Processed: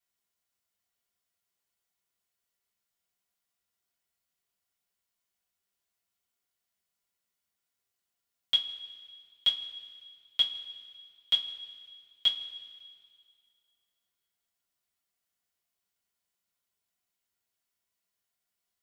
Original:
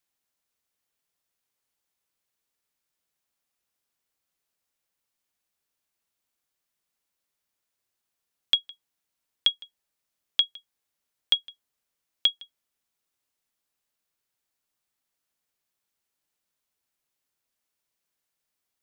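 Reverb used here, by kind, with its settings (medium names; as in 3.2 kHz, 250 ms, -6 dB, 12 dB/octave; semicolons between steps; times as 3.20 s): two-slope reverb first 0.2 s, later 2.1 s, from -20 dB, DRR -6.5 dB; trim -10 dB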